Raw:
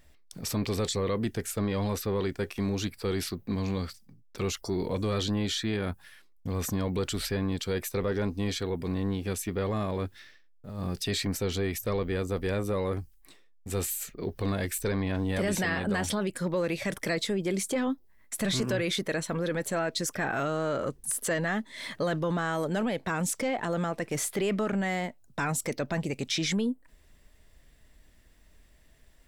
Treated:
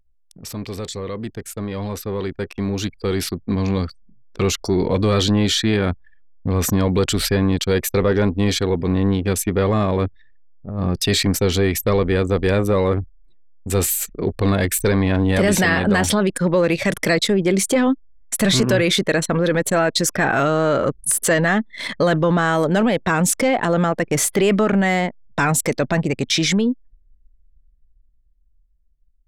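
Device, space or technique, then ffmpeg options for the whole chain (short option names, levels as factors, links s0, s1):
voice memo with heavy noise removal: -af "anlmdn=0.631,dynaudnorm=f=540:g=11:m=3.98"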